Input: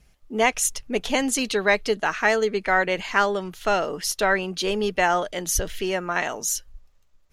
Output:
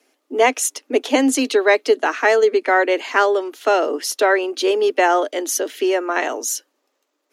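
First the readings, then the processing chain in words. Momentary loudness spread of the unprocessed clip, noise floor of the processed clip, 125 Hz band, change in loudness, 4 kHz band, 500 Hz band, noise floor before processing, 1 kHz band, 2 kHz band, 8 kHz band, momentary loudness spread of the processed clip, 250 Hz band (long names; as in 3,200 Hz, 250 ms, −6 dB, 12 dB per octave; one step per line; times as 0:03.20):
5 LU, −72 dBFS, below −20 dB, +5.0 dB, +2.0 dB, +7.5 dB, −59 dBFS, +5.0 dB, +3.0 dB, +2.0 dB, 7 LU, +6.5 dB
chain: Butterworth high-pass 260 Hz 96 dB per octave
low-shelf EQ 480 Hz +11.5 dB
level +2 dB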